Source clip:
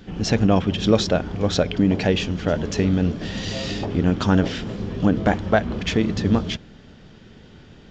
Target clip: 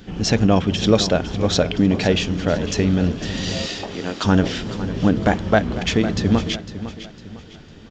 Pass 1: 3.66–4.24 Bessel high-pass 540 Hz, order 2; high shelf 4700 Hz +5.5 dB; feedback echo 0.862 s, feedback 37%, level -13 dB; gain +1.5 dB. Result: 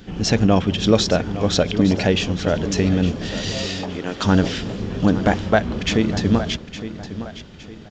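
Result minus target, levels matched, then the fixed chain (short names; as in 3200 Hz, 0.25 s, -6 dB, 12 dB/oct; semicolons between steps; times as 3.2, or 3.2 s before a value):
echo 0.358 s late
3.66–4.24 Bessel high-pass 540 Hz, order 2; high shelf 4700 Hz +5.5 dB; feedback echo 0.504 s, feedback 37%, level -13 dB; gain +1.5 dB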